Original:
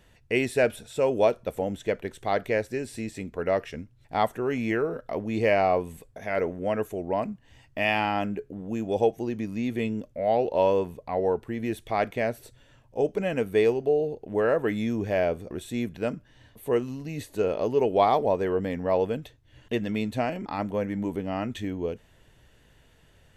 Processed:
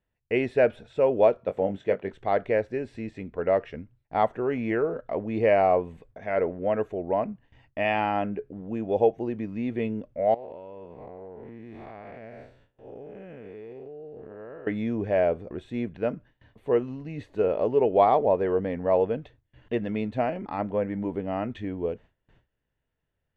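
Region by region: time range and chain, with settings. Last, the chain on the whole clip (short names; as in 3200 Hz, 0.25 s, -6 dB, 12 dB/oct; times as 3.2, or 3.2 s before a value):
1.37–2.13 HPF 95 Hz + doubler 21 ms -7.5 dB
10.34–14.67 time blur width 0.238 s + compressor 20:1, threshold -36 dBFS
whole clip: LPF 2500 Hz 12 dB/oct; gate with hold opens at -46 dBFS; dynamic EQ 570 Hz, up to +4 dB, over -36 dBFS, Q 1.1; gain -1.5 dB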